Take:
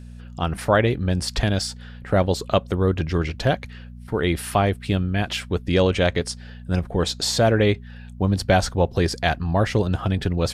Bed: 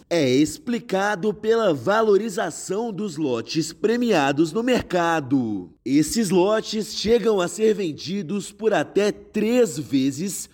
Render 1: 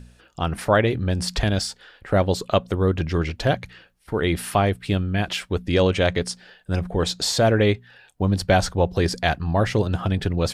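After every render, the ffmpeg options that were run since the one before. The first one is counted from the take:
ffmpeg -i in.wav -af "bandreject=frequency=60:width_type=h:width=4,bandreject=frequency=120:width_type=h:width=4,bandreject=frequency=180:width_type=h:width=4,bandreject=frequency=240:width_type=h:width=4" out.wav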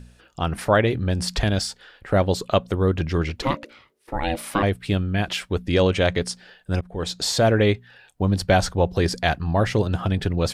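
ffmpeg -i in.wav -filter_complex "[0:a]asettb=1/sr,asplit=3[link_01][link_02][link_03];[link_01]atrim=end=3.424[link_04];[link_02]atrim=start=3.42:end=4.63,asetpts=PTS-STARTPTS,afade=type=in:duration=0.004:curve=qsin,afade=type=out:start_time=1.206:duration=0.004:curve=qsin,aeval=exprs='val(0)*sin(2*PI*410*n/s)':channel_layout=same[link_05];[link_03]atrim=start=4.626[link_06];[link_04][link_05]acrossfade=duration=0.004:curve1=hsin:curve2=qsin[link_07];[link_07][link_06]acrossfade=duration=0.004:curve1=qsin:curve2=hsin,asplit=2[link_08][link_09];[link_08]atrim=end=6.81,asetpts=PTS-STARTPTS,afade=type=out:start_time=6.806:duration=0.004:curve=hsin:silence=0.105925[link_10];[link_09]atrim=start=6.81,asetpts=PTS-STARTPTS,afade=type=in:duration=0.64:curve=qsin:silence=0.105925[link_11];[link_10][link_11]concat=n=2:v=0:a=1" out.wav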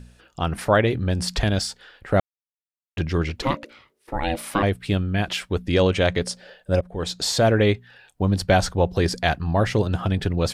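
ffmpeg -i in.wav -filter_complex "[0:a]asettb=1/sr,asplit=3[link_01][link_02][link_03];[link_01]atrim=end=6.244[link_04];[link_02]atrim=start=6.24:end=6.89,asetpts=PTS-STARTPTS,afade=type=in:duration=0.004:curve=qsin,afade=type=out:start_time=0.646:duration=0.004:curve=qsin,equalizer=frequency=560:width_type=o:width=0.42:gain=14[link_05];[link_03]atrim=start=6.886[link_06];[link_04][link_05]acrossfade=duration=0.004:curve1=hsin:curve2=qsin[link_07];[link_07][link_06]acrossfade=duration=0.004:curve1=qsin:curve2=hsin,asplit=3[link_08][link_09][link_10];[link_08]atrim=end=2.2,asetpts=PTS-STARTPTS,afade=type=out:start_time=2.196:duration=0.004:curve=hsin[link_11];[link_09]atrim=start=2.2:end=2.97,asetpts=PTS-STARTPTS,volume=0[link_12];[link_10]atrim=start=2.97,asetpts=PTS-STARTPTS,afade=type=in:duration=0.004:curve=hsin[link_13];[link_11][link_12][link_13]concat=n=3:v=0:a=1" out.wav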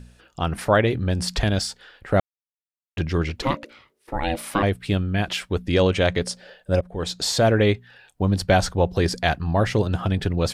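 ffmpeg -i in.wav -af anull out.wav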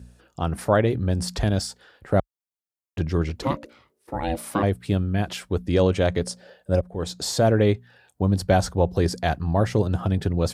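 ffmpeg -i in.wav -af "highpass=frequency=43:width=0.5412,highpass=frequency=43:width=1.3066,equalizer=frequency=2600:width_type=o:width=2:gain=-8" out.wav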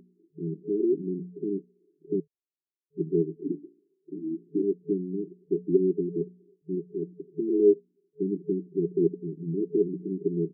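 ffmpeg -i in.wav -af "afftfilt=real='re*between(b*sr/4096,160,430)':imag='im*between(b*sr/4096,160,430)':win_size=4096:overlap=0.75,aecho=1:1:2.3:0.8" out.wav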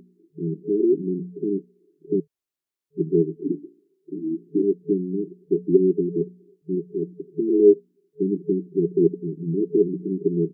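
ffmpeg -i in.wav -af "volume=5.5dB" out.wav

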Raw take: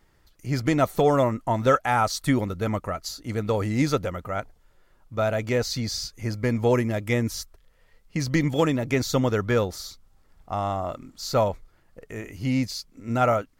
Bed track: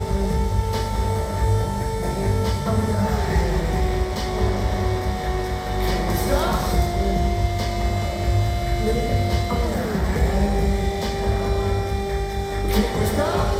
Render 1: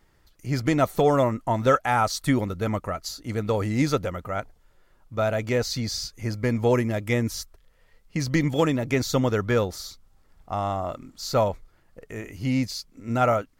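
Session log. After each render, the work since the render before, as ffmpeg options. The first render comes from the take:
ffmpeg -i in.wav -af anull out.wav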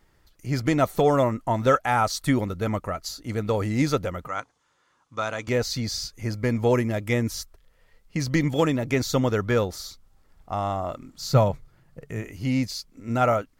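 ffmpeg -i in.wav -filter_complex "[0:a]asettb=1/sr,asplit=3[link_01][link_02][link_03];[link_01]atrim=end=4.274[link_04];[link_02]atrim=start=4.27:end=5.48,asetpts=PTS-STARTPTS,afade=type=in:duration=0.004:curve=qsin,afade=type=out:start_time=1.206:duration=0.004:curve=qsin,highpass=190,equalizer=frequency=200:width_type=q:width=4:gain=-8,equalizer=frequency=390:width_type=q:width=4:gain=-8,equalizer=frequency=630:width_type=q:width=4:gain=-9,equalizer=frequency=1100:width_type=q:width=4:gain=7,equalizer=frequency=3500:width_type=q:width=4:gain=3,equalizer=frequency=6300:width_type=q:width=4:gain=7,lowpass=frequency=9500:width=0.5412,lowpass=frequency=9500:width=1.3066[link_05];[link_03]atrim=start=5.476[link_06];[link_04][link_05]acrossfade=duration=0.004:curve1=hsin:curve2=qsin[link_07];[link_07][link_06]acrossfade=duration=0.004:curve1=qsin:curve2=hsin,asettb=1/sr,asplit=3[link_08][link_09][link_10];[link_08]atrim=end=11.174[link_11];[link_09]atrim=start=11.17:end=12.23,asetpts=PTS-STARTPTS,afade=type=in:duration=0.004:curve=qsin,afade=type=out:start_time=1.056:duration=0.004:curve=qsin,equalizer=frequency=140:width=2:gain=14[link_12];[link_10]atrim=start=12.226[link_13];[link_11][link_12]acrossfade=duration=0.004:curve1=hsin:curve2=qsin[link_14];[link_14][link_13]acrossfade=duration=0.004:curve1=qsin:curve2=hsin" out.wav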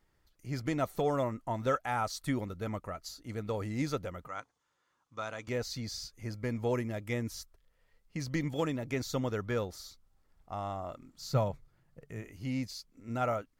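ffmpeg -i in.wav -af "volume=-10.5dB" out.wav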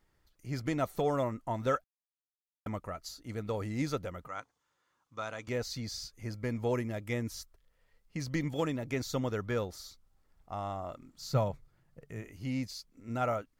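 ffmpeg -i in.wav -filter_complex "[0:a]asplit=3[link_01][link_02][link_03];[link_01]atrim=end=1.84,asetpts=PTS-STARTPTS,afade=type=out:start_time=1.836:duration=0.004:curve=hsin[link_04];[link_02]atrim=start=1.84:end=2.66,asetpts=PTS-STARTPTS,volume=0[link_05];[link_03]atrim=start=2.66,asetpts=PTS-STARTPTS,afade=type=in:duration=0.004:curve=hsin[link_06];[link_04][link_05][link_06]concat=n=3:v=0:a=1" out.wav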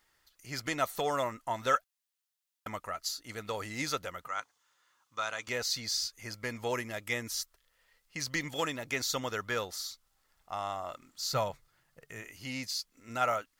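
ffmpeg -i in.wav -af "tiltshelf=frequency=640:gain=-9.5,bandreject=frequency=2300:width=22" out.wav

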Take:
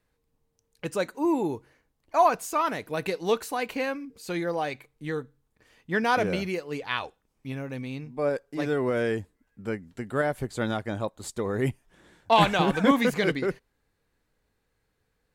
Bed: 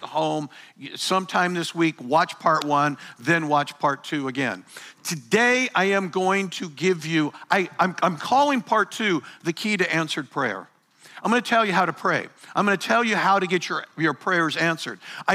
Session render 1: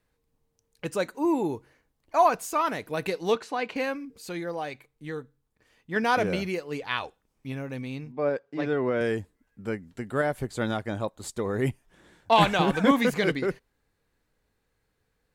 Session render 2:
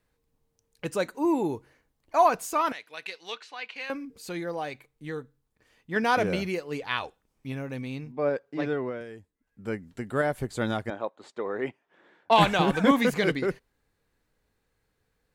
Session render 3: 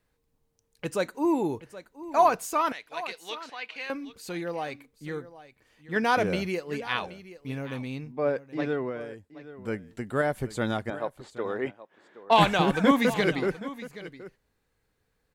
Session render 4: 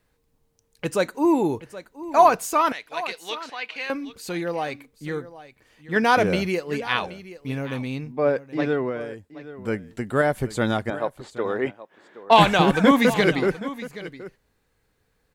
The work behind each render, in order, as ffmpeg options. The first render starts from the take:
ffmpeg -i in.wav -filter_complex "[0:a]asettb=1/sr,asplit=3[link_01][link_02][link_03];[link_01]atrim=end=3.354[link_04];[link_02]atrim=start=3.35:end=3.76,asetpts=PTS-STARTPTS,afade=type=in:duration=0.004:curve=qsin,afade=type=out:start_time=0.406:duration=0.004:curve=qsin,highpass=120,lowpass=4800[link_05];[link_03]atrim=start=3.756[link_06];[link_04][link_05]acrossfade=duration=0.004:curve1=hsin:curve2=qsin[link_07];[link_07][link_06]acrossfade=duration=0.004:curve1=qsin:curve2=hsin,asettb=1/sr,asplit=3[link_08][link_09][link_10];[link_08]atrim=end=8.124[link_11];[link_09]atrim=start=8.12:end=9.01,asetpts=PTS-STARTPTS,afade=type=in:duration=0.004:curve=qsin,afade=type=out:start_time=0.886:duration=0.004:curve=qsin,highpass=110,lowpass=3700[link_12];[link_10]atrim=start=9.006[link_13];[link_11][link_12]acrossfade=duration=0.004:curve1=hsin:curve2=qsin[link_14];[link_14][link_13]acrossfade=duration=0.004:curve1=qsin:curve2=hsin,asplit=3[link_15][link_16][link_17];[link_15]atrim=end=4.292[link_18];[link_16]atrim=start=4.288:end=5.962,asetpts=PTS-STARTPTS,volume=-4dB[link_19];[link_17]atrim=start=5.958[link_20];[link_18][link_19]acrossfade=duration=0.004:curve1=hsin:curve2=hsin[link_21];[link_21][link_20]acrossfade=duration=0.004:curve1=hsin:curve2=hsin" out.wav
ffmpeg -i in.wav -filter_complex "[0:a]asettb=1/sr,asplit=3[link_01][link_02][link_03];[link_01]atrim=end=2.724[link_04];[link_02]atrim=start=2.72:end=3.9,asetpts=PTS-STARTPTS,afade=type=in:duration=0.004:curve=qsin,afade=type=out:start_time=1.176:duration=0.004:curve=qsin,bandpass=frequency=3100:width_type=q:width=1.1[link_05];[link_03]atrim=start=3.896[link_06];[link_04][link_05]acrossfade=duration=0.004:curve1=hsin:curve2=qsin[link_07];[link_07][link_06]acrossfade=duration=0.004:curve1=qsin:curve2=hsin,asettb=1/sr,asplit=3[link_08][link_09][link_10];[link_08]atrim=end=10.904[link_11];[link_09]atrim=start=10.9:end=12.31,asetpts=PTS-STARTPTS,afade=type=in:duration=0.004:curve=qsin,afade=type=out:start_time=1.406:duration=0.004:curve=qsin,highpass=370,lowpass=2600[link_12];[link_10]atrim=start=12.306[link_13];[link_11][link_12]acrossfade=duration=0.004:curve1=hsin:curve2=qsin[link_14];[link_14][link_13]acrossfade=duration=0.004:curve1=qsin:curve2=hsin,asplit=3[link_15][link_16][link_17];[link_15]atrim=end=9.05,asetpts=PTS-STARTPTS,afade=type=out:start_time=8.62:duration=0.43:silence=0.16788[link_18];[link_16]atrim=start=9.05:end=9.33,asetpts=PTS-STARTPTS,volume=-15.5dB[link_19];[link_17]atrim=start=9.33,asetpts=PTS-STARTPTS,afade=type=in:duration=0.43:silence=0.16788[link_20];[link_18][link_19][link_20]concat=n=3:v=0:a=1" out.wav
ffmpeg -i in.wav -af "aecho=1:1:774:0.158" out.wav
ffmpeg -i in.wav -af "volume=5.5dB,alimiter=limit=-3dB:level=0:latency=1" out.wav

